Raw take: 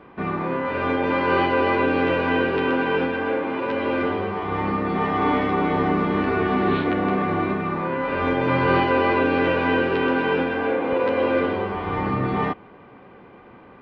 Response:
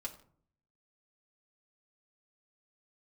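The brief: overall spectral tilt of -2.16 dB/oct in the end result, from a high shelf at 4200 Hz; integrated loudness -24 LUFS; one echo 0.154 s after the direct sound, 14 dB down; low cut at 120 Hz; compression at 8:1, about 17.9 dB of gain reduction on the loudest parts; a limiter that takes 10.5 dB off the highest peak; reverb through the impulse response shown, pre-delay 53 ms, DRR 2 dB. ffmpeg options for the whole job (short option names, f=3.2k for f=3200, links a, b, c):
-filter_complex "[0:a]highpass=120,highshelf=f=4.2k:g=-8.5,acompressor=threshold=-36dB:ratio=8,alimiter=level_in=11dB:limit=-24dB:level=0:latency=1,volume=-11dB,aecho=1:1:154:0.2,asplit=2[a][b];[1:a]atrim=start_sample=2205,adelay=53[c];[b][c]afir=irnorm=-1:irlink=0,volume=-1dB[d];[a][d]amix=inputs=2:normalize=0,volume=16.5dB"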